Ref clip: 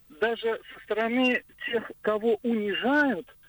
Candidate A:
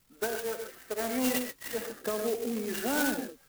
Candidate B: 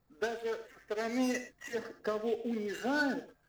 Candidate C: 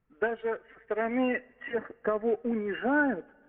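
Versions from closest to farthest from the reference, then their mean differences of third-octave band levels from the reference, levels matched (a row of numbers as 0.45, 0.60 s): C, B, A; 4.5, 5.5, 12.5 dB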